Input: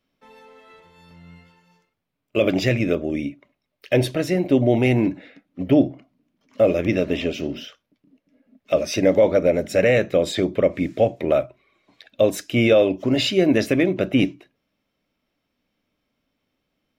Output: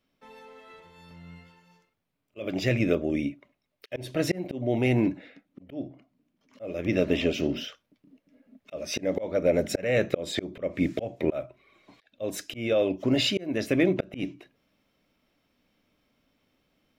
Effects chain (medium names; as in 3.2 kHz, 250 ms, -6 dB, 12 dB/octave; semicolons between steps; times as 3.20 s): slow attack 479 ms; gain riding within 4 dB 0.5 s